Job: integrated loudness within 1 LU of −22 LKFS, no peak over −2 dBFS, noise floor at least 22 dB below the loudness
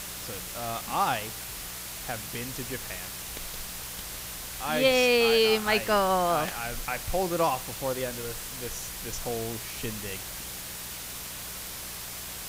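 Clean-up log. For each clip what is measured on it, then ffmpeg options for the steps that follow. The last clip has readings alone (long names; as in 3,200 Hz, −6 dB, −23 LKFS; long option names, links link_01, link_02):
mains hum 60 Hz; hum harmonics up to 180 Hz; level of the hum −48 dBFS; background noise floor −39 dBFS; target noise floor −51 dBFS; integrated loudness −29.0 LKFS; sample peak −10.5 dBFS; target loudness −22.0 LKFS
→ -af "bandreject=frequency=60:width_type=h:width=4,bandreject=frequency=120:width_type=h:width=4,bandreject=frequency=180:width_type=h:width=4"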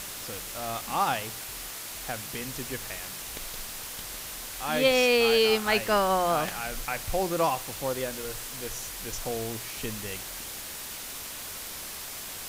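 mains hum none found; background noise floor −39 dBFS; target noise floor −51 dBFS
→ -af "afftdn=noise_reduction=12:noise_floor=-39"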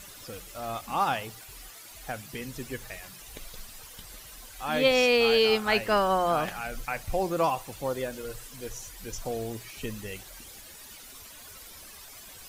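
background noise floor −47 dBFS; target noise floor −50 dBFS
→ -af "afftdn=noise_reduction=6:noise_floor=-47"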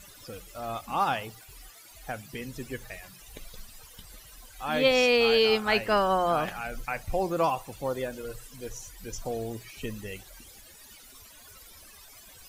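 background noise floor −51 dBFS; integrated loudness −27.5 LKFS; sample peak −10.5 dBFS; target loudness −22.0 LKFS
→ -af "volume=5.5dB"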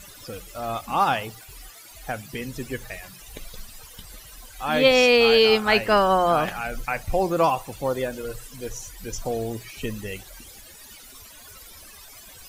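integrated loudness −22.0 LKFS; sample peak −5.0 dBFS; background noise floor −46 dBFS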